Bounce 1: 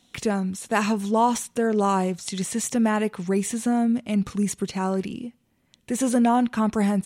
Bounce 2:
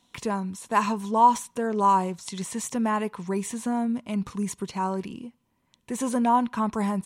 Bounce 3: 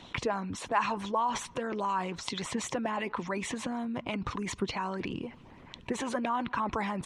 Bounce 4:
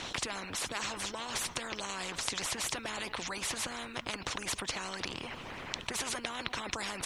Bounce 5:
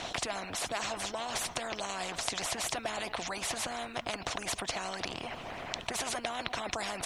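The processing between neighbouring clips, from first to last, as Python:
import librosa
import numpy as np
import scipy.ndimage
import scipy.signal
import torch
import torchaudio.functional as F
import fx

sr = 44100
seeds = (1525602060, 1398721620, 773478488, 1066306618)

y1 = fx.peak_eq(x, sr, hz=1000.0, db=13.5, octaves=0.27)
y1 = y1 * librosa.db_to_amplitude(-5.0)
y2 = scipy.signal.sosfilt(scipy.signal.butter(2, 3200.0, 'lowpass', fs=sr, output='sos'), y1)
y2 = fx.hpss(y2, sr, part='harmonic', gain_db=-17)
y2 = fx.env_flatten(y2, sr, amount_pct=50)
y2 = y2 * librosa.db_to_amplitude(-2.0)
y3 = fx.spectral_comp(y2, sr, ratio=4.0)
y3 = y3 * librosa.db_to_amplitude(2.0)
y4 = fx.peak_eq(y3, sr, hz=690.0, db=10.5, octaves=0.4)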